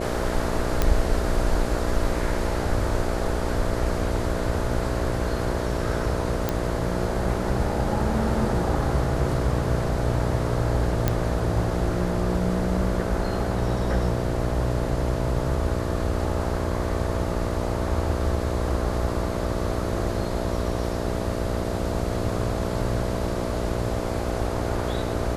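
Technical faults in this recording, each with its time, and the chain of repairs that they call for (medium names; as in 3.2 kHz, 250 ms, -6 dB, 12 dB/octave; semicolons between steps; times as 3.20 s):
buzz 60 Hz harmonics 11 -29 dBFS
0.82 s: pop -7 dBFS
6.49 s: pop -9 dBFS
11.08 s: pop -7 dBFS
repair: de-click; de-hum 60 Hz, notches 11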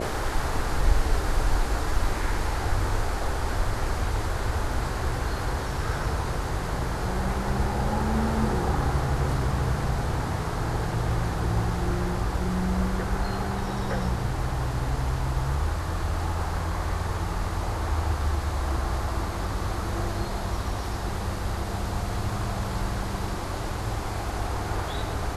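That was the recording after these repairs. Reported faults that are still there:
6.49 s: pop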